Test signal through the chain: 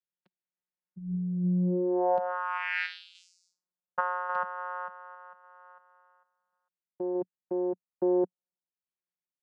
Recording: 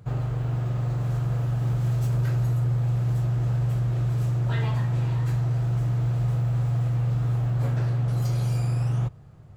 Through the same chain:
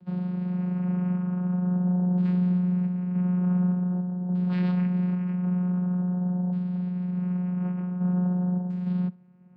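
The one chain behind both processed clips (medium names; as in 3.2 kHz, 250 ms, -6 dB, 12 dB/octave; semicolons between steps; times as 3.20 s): LFO low-pass saw down 0.46 Hz 670–3600 Hz; random-step tremolo; vocoder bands 8, saw 180 Hz; trim +1.5 dB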